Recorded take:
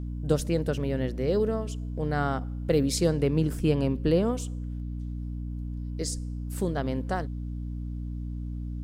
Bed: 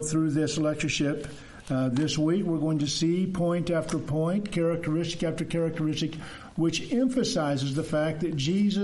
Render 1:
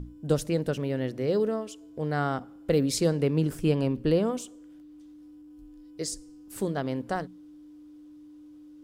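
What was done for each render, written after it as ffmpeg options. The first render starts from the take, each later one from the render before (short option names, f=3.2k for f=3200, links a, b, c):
-af "bandreject=f=60:t=h:w=6,bandreject=f=120:t=h:w=6,bandreject=f=180:t=h:w=6,bandreject=f=240:t=h:w=6"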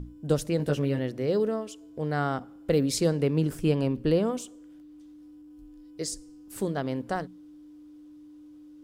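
-filter_complex "[0:a]asettb=1/sr,asplit=3[a][b][c];[a]atrim=end=0.584[d];[b]atrim=start=0.58:end=0.99,asetpts=PTS-STARTPTS,afade=t=in:d=0.004:c=qsin,afade=t=out:st=0.406:d=0.004:c=qsin,asplit=2[e][f];[f]adelay=14,volume=-3dB[g];[e][g]amix=inputs=2:normalize=0,atrim=end_sample=18081[h];[c]atrim=start=0.986[i];[d][h]acrossfade=d=0.004:c1=hsin:c2=qsin[j];[j][i]acrossfade=d=0.004:c1=qsin:c2=hsin"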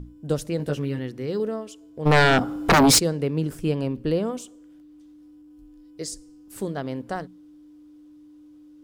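-filter_complex "[0:a]asettb=1/sr,asplit=3[a][b][c];[a]atrim=end=0.784[d];[b]atrim=start=0.78:end=1.4,asetpts=PTS-STARTPTS,afade=t=in:d=0.004:c=qsin,afade=t=out:st=0.616:d=0.004:c=qsin,equalizer=f=610:w=3.6:g=-12[e];[c]atrim=start=1.396[f];[d][e]acrossfade=d=0.004:c1=hsin:c2=qsin[g];[g][f]acrossfade=d=0.004:c1=qsin:c2=hsin,asplit=3[h][i][j];[h]afade=t=out:st=2.05:d=0.02[k];[i]aeval=exprs='0.266*sin(PI/2*5.01*val(0)/0.266)':c=same,afade=t=in:st=2.05:d=0.02,afade=t=out:st=2.98:d=0.02[l];[j]afade=t=in:st=2.98:d=0.02[m];[k][l][m]amix=inputs=3:normalize=0"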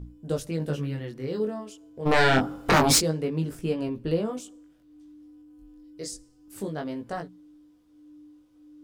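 -af "flanger=delay=17.5:depth=6.6:speed=0.27"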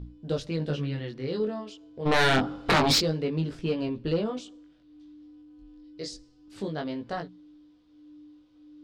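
-af "lowpass=f=4.1k:t=q:w=2,asoftclip=type=tanh:threshold=-16dB"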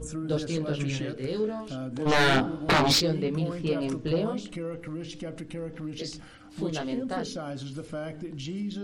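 -filter_complex "[1:a]volume=-9dB[a];[0:a][a]amix=inputs=2:normalize=0"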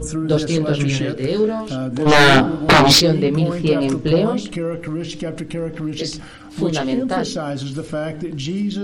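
-af "volume=11dB"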